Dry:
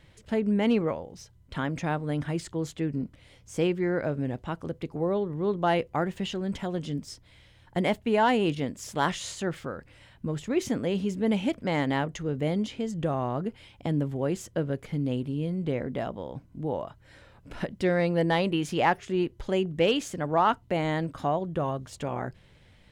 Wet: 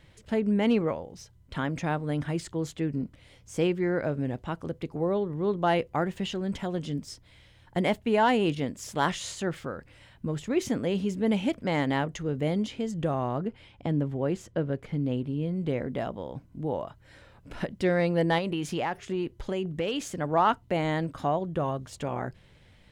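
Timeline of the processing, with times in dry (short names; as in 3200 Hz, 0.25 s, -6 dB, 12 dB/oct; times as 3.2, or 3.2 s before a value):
13.38–15.56 LPF 3300 Hz 6 dB/oct
18.38–20.14 compressor, threshold -25 dBFS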